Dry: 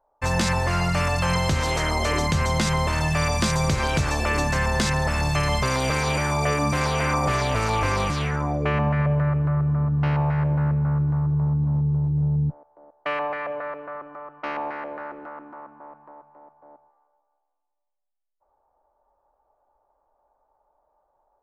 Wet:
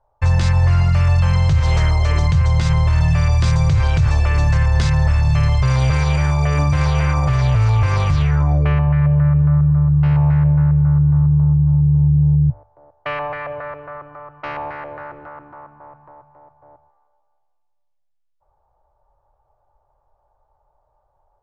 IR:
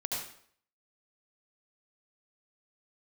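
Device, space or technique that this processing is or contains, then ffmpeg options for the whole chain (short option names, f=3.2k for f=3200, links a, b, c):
car stereo with a boomy subwoofer: -af "lowpass=6k,lowshelf=f=160:t=q:w=3:g=11.5,bandreject=f=50:t=h:w=6,bandreject=f=100:t=h:w=6,alimiter=limit=-10.5dB:level=0:latency=1:release=96,volume=2.5dB"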